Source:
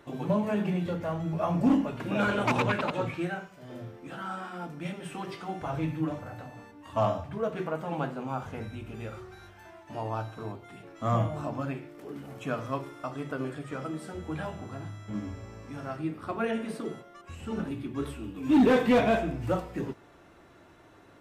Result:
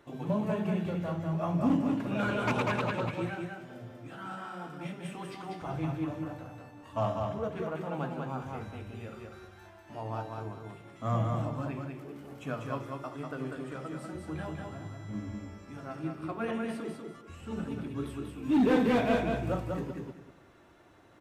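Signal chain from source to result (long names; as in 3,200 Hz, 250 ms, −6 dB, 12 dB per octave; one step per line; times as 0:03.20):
dynamic equaliser 130 Hz, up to +3 dB, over −38 dBFS, Q 0.86
on a send: repeating echo 194 ms, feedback 26%, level −3.5 dB
on the sum: level −5 dB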